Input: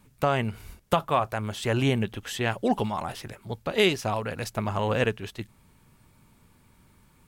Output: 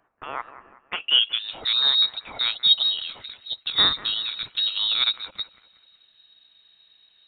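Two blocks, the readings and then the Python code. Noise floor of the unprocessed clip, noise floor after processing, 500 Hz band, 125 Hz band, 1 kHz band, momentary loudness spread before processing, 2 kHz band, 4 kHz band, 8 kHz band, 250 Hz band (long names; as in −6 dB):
−61 dBFS, −62 dBFS, −18.0 dB, −22.5 dB, −7.5 dB, 14 LU, −1.0 dB, +17.0 dB, below −40 dB, −19.0 dB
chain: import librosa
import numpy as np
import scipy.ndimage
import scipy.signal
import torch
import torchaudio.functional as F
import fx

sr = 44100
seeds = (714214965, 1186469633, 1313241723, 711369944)

y = fx.filter_sweep_highpass(x, sr, from_hz=3100.0, to_hz=220.0, start_s=0.78, end_s=1.62, q=4.1)
y = fx.echo_wet_highpass(y, sr, ms=187, feedback_pct=41, hz=1500.0, wet_db=-14.0)
y = fx.freq_invert(y, sr, carrier_hz=4000)
y = F.gain(torch.from_numpy(y), -2.0).numpy()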